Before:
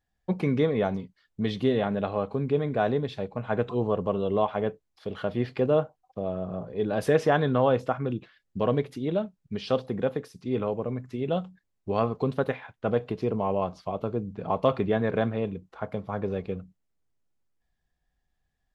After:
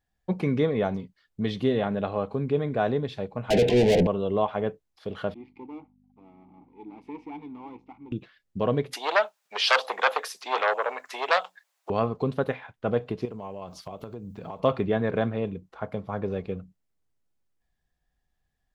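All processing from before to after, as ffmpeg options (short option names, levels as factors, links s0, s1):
-filter_complex "[0:a]asettb=1/sr,asplit=3[s0][s1][s2];[s0]atrim=end=3.504[s3];[s1]atrim=start=3.5:end=4.07,asetpts=PTS-STARTPTS,afade=t=in:d=0.004:c=qsin,afade=t=out:st=0.566:d=0.004:c=qsin,bass=f=250:g=3,treble=f=4000:g=-13,asplit=2[s4][s5];[s5]highpass=f=720:p=1,volume=56.2,asoftclip=type=tanh:threshold=0.266[s6];[s4][s6]amix=inputs=2:normalize=0,lowpass=f=4600:p=1,volume=0.501,asuperstop=centerf=1200:order=4:qfactor=0.8[s7];[s2]atrim=start=4.066[s8];[s3][s7]acrossfade=d=0.004:c1=hsin:c2=qsin[s9];[s9][s8]acrossfade=d=0.004:c1=qsin:c2=hsin,asettb=1/sr,asplit=3[s10][s11][s12];[s10]atrim=end=5.344[s13];[s11]atrim=start=5.34:end=8.12,asetpts=PTS-STARTPTS,afade=t=in:d=0.004:c=qsin,afade=t=out:st=2.776:d=0.004:c=qsin,aeval=exprs='if(lt(val(0),0),0.251*val(0),val(0))':c=same,aeval=exprs='val(0)+0.01*(sin(2*PI*50*n/s)+sin(2*PI*2*50*n/s)/2+sin(2*PI*3*50*n/s)/3+sin(2*PI*4*50*n/s)/4+sin(2*PI*5*50*n/s)/5)':c=same,asplit=3[s14][s15][s16];[s14]bandpass=f=300:t=q:w=8,volume=1[s17];[s15]bandpass=f=870:t=q:w=8,volume=0.501[s18];[s16]bandpass=f=2240:t=q:w=8,volume=0.355[s19];[s17][s18][s19]amix=inputs=3:normalize=0[s20];[s12]atrim=start=8.116[s21];[s13][s20]acrossfade=d=0.004:c1=hsin:c2=qsin[s22];[s22][s21]acrossfade=d=0.004:c1=qsin:c2=hsin,asettb=1/sr,asplit=3[s23][s24][s25];[s23]atrim=end=8.934[s26];[s24]atrim=start=8.93:end=11.9,asetpts=PTS-STARTPTS,afade=t=in:d=0.004:c=qsin,afade=t=out:st=2.966:d=0.004:c=qsin,aeval=exprs='0.282*sin(PI/2*3.98*val(0)/0.282)':c=same,highpass=f=680:w=0.5412,highpass=f=680:w=1.3066[s27];[s25]atrim=start=11.896[s28];[s26][s27]acrossfade=d=0.004:c1=hsin:c2=qsin[s29];[s29][s28]acrossfade=d=0.004:c1=qsin:c2=hsin,asettb=1/sr,asplit=3[s30][s31][s32];[s30]atrim=end=13.254[s33];[s31]atrim=start=13.25:end=14.6,asetpts=PTS-STARTPTS,afade=t=in:d=0.004:c=qsin,afade=t=out:st=1.346:d=0.004:c=qsin,aemphasis=mode=production:type=75kf,acompressor=threshold=0.02:ratio=6:attack=3.2:release=140:knee=1:detection=peak[s34];[s32]atrim=start=14.596[s35];[s33][s34]acrossfade=d=0.004:c1=hsin:c2=qsin[s36];[s36][s35]acrossfade=d=0.004:c1=qsin:c2=hsin"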